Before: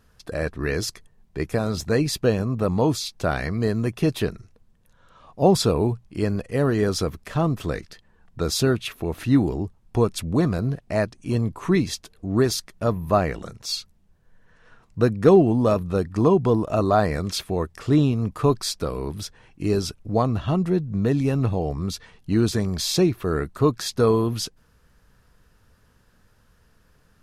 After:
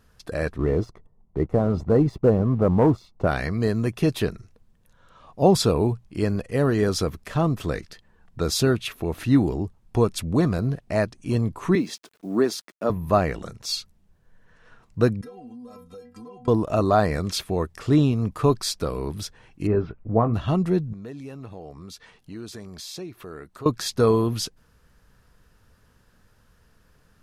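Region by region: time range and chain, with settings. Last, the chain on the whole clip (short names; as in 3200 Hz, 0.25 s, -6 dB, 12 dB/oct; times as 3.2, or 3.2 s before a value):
0.58–3.27 polynomial smoothing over 65 samples + sample leveller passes 1
11.75–12.9 HPF 200 Hz 24 dB/oct + high shelf 2600 Hz -7.5 dB + requantised 10-bit, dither none
15.21–16.48 metallic resonator 240 Hz, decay 0.23 s, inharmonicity 0.008 + compressor 8:1, threshold -39 dBFS + high shelf 4800 Hz +8.5 dB
19.67–20.34 LPF 2000 Hz 24 dB/oct + doubler 18 ms -9 dB
20.93–23.66 low shelf 160 Hz -10.5 dB + compressor 2:1, threshold -45 dBFS
whole clip: dry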